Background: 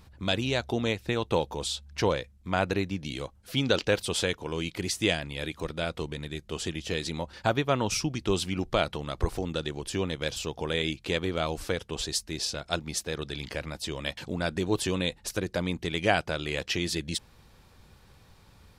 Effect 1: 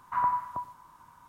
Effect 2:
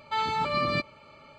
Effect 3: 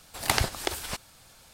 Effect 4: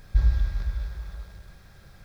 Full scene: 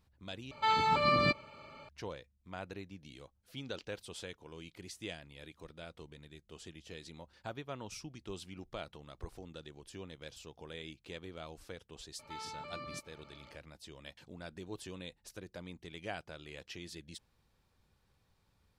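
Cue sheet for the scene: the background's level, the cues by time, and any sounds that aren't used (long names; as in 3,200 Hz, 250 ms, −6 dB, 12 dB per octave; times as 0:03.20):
background −17.5 dB
0:00.51: overwrite with 2 −1 dB
0:12.19: mix in 2 −7 dB + downward compressor 2 to 1, threshold −45 dBFS
not used: 1, 3, 4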